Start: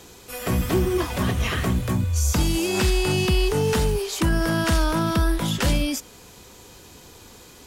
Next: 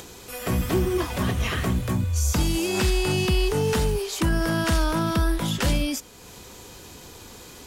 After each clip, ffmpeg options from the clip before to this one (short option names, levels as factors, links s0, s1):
-af "acompressor=mode=upward:threshold=0.0178:ratio=2.5,volume=0.841"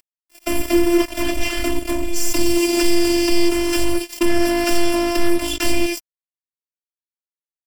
-af "acrusher=bits=3:mix=0:aa=0.5,afftfilt=real='hypot(re,im)*cos(PI*b)':imag='0':win_size=512:overlap=0.75,aecho=1:1:3.3:0.78,volume=1.88"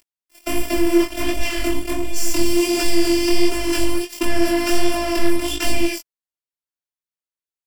-af "flanger=delay=18.5:depth=5.7:speed=1.4,volume=1.26"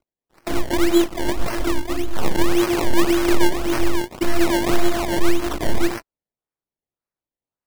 -filter_complex "[0:a]acrossover=split=170|530|7800[s0][s1][s2][s3];[s2]aeval=exprs='sgn(val(0))*max(abs(val(0))-0.0112,0)':c=same[s4];[s0][s1][s4][s3]amix=inputs=4:normalize=0,acrusher=samples=24:mix=1:aa=0.000001:lfo=1:lforange=24:lforate=1.8"